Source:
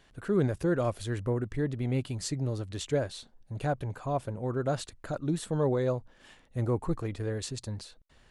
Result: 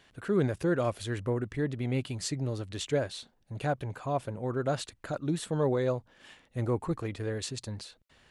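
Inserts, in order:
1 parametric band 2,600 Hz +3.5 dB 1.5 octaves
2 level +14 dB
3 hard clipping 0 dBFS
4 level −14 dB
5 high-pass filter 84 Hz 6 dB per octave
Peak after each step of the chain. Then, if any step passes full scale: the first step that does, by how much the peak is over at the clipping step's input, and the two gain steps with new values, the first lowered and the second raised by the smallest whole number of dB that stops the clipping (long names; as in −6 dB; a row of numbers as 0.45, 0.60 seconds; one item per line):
−15.5, −1.5, −1.5, −15.5, −17.0 dBFS
no step passes full scale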